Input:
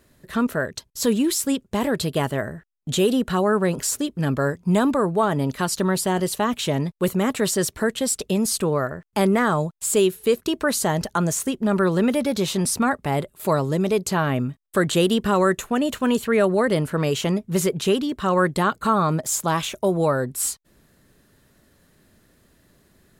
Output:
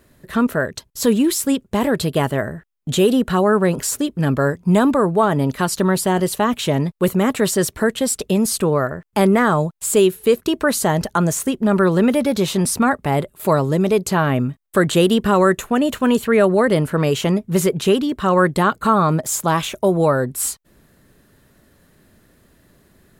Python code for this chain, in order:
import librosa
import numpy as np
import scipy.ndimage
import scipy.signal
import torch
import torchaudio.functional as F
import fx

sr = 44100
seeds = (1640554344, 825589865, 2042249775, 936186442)

y = fx.peak_eq(x, sr, hz=5600.0, db=-3.5, octaves=1.8)
y = y * 10.0 ** (4.5 / 20.0)